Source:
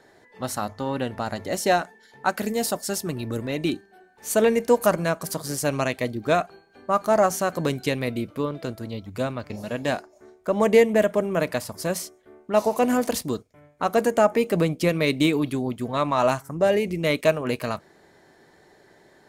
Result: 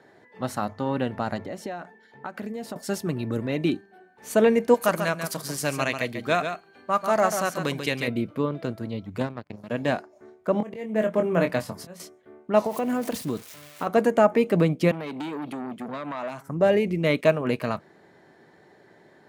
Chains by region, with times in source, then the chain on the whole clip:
1.38–2.76 high shelf 4100 Hz -7.5 dB + compressor, threshold -31 dBFS
4.74–8.08 tilt shelf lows -6 dB, about 1300 Hz + echo 0.14 s -7.5 dB
9.2–9.7 low shelf 320 Hz +5.5 dB + power-law curve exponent 2
10.52–12 HPF 49 Hz + auto swell 0.538 s + doubler 23 ms -6 dB
12.66–13.87 switching spikes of -26 dBFS + compressor 4:1, threshold -24 dBFS
14.91–16.48 HPF 160 Hz 24 dB/oct + compressor, threshold -26 dBFS + core saturation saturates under 1300 Hz
whole clip: HPF 120 Hz 12 dB/oct; tone controls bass +4 dB, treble -9 dB

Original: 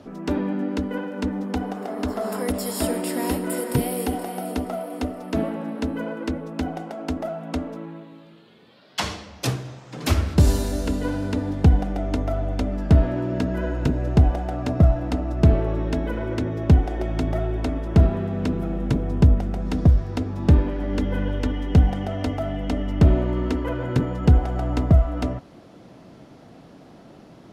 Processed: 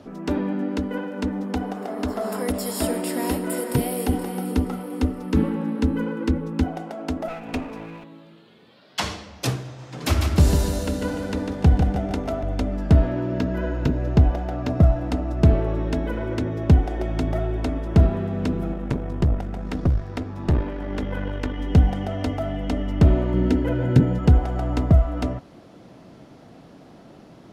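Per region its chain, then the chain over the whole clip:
4.09–6.64 Butterworth band-stop 660 Hz, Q 3.6 + low shelf 230 Hz +10 dB
7.28–8.04 minimum comb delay 4.1 ms + bell 2500 Hz +12 dB 0.22 oct + mismatched tape noise reduction encoder only
9.64–12.43 notches 50/100/150/200/250/300/350/400/450 Hz + feedback echo 0.148 s, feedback 39%, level -5.5 dB
13.09–14.7 bell 9000 Hz -10.5 dB 0.45 oct + notch 770 Hz, Q 19
18.73–21.59 bell 1400 Hz +4.5 dB 2.3 oct + tube stage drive 13 dB, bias 0.75
23.34–24.19 Butterworth band-stop 1100 Hz, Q 3.7 + bell 160 Hz +7.5 dB 2.1 oct
whole clip: dry

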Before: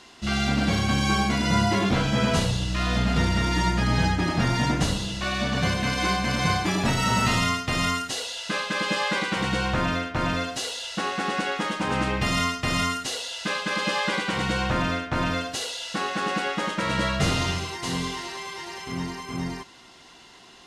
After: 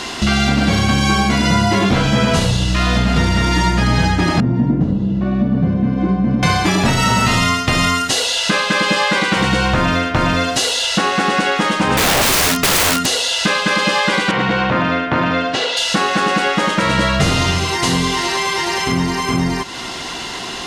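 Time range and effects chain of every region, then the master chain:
4.4–6.43 band-pass 230 Hz, Q 1.4 + tilt -1.5 dB/oct
11.97–13.06 bell 200 Hz +12.5 dB 0.92 oct + wrapped overs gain 20 dB
14.31–15.77 BPF 140–3000 Hz + core saturation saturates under 560 Hz
whole clip: compressor 3:1, threshold -41 dBFS; maximiser +24.5 dB; gain -1 dB

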